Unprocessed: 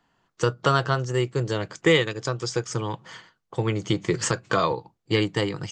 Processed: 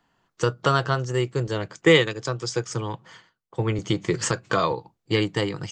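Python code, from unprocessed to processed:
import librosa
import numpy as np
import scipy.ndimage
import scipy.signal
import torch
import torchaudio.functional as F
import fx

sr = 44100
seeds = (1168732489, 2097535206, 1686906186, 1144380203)

y = fx.band_widen(x, sr, depth_pct=40, at=(1.47, 3.79))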